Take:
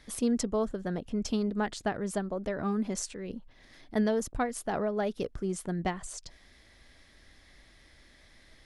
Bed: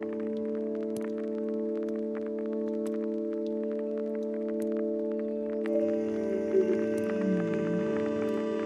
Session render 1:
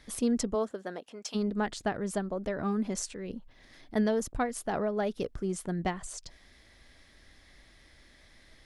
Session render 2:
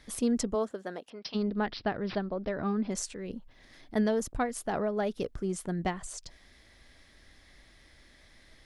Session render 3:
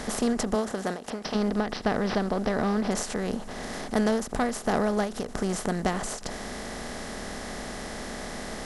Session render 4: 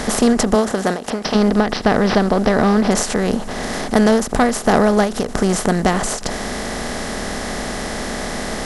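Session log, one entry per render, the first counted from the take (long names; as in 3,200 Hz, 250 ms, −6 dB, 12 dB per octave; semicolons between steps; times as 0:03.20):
0:00.54–0:01.34: high-pass filter 230 Hz → 810 Hz
0:01.10–0:02.91: bad sample-rate conversion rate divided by 4×, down none, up filtered
compressor on every frequency bin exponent 0.4; every ending faded ahead of time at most 130 dB per second
level +11.5 dB; brickwall limiter −1 dBFS, peak gain reduction 2 dB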